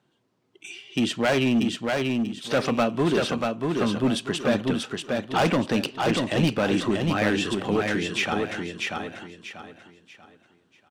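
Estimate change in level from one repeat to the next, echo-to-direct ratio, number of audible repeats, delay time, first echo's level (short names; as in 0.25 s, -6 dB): -10.0 dB, -3.0 dB, 4, 0.638 s, -3.5 dB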